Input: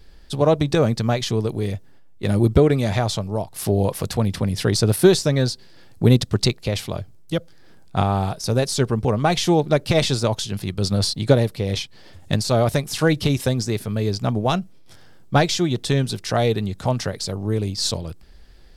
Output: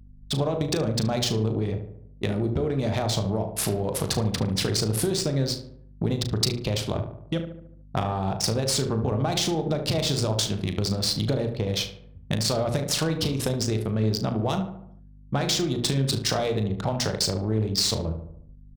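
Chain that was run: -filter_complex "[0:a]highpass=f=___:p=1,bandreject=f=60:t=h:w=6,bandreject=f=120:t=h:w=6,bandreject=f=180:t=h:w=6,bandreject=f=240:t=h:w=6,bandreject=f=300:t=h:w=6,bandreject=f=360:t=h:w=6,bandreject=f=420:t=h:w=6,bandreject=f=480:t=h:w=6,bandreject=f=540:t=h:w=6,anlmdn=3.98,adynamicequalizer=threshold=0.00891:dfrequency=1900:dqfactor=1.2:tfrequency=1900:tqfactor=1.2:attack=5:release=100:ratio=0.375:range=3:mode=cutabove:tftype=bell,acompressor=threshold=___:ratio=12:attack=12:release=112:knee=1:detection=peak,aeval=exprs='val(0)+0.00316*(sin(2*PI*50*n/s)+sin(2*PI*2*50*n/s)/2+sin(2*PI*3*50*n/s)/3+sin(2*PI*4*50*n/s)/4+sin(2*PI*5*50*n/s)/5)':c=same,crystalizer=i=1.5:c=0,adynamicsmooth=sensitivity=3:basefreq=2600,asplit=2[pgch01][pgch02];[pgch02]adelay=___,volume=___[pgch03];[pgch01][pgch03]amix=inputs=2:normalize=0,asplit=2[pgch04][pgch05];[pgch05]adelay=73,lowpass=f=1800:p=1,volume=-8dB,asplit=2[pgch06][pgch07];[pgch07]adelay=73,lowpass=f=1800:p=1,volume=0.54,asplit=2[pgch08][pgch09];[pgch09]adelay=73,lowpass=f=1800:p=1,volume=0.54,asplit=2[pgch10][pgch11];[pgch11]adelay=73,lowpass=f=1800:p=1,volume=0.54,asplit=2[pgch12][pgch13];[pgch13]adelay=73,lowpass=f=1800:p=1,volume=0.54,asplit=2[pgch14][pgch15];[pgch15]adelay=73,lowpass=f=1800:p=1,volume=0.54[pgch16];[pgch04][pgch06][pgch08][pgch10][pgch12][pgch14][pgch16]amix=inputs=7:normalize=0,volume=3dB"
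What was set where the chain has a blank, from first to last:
55, -27dB, 37, -10dB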